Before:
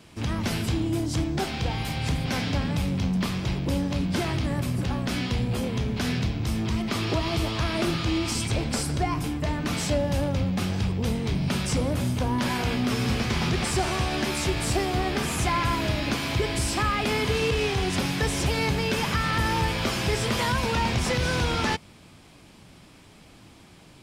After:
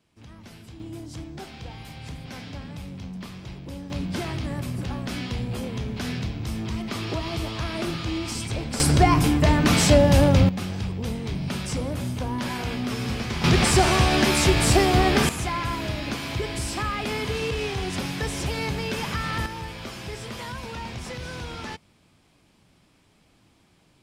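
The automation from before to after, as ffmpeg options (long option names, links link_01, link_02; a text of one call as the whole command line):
ffmpeg -i in.wav -af "asetnsamples=nb_out_samples=441:pad=0,asendcmd='0.8 volume volume -11dB;3.9 volume volume -3dB;8.8 volume volume 9dB;10.49 volume volume -3dB;13.44 volume volume 7dB;15.29 volume volume -3dB;19.46 volume volume -10dB',volume=-18dB" out.wav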